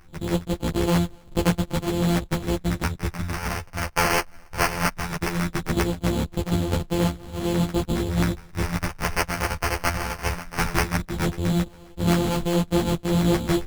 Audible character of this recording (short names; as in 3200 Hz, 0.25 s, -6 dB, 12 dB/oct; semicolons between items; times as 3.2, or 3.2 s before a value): a buzz of ramps at a fixed pitch in blocks of 256 samples; phasing stages 2, 0.18 Hz, lowest notch 250–2400 Hz; aliases and images of a low sample rate 3700 Hz, jitter 0%; a shimmering, thickened sound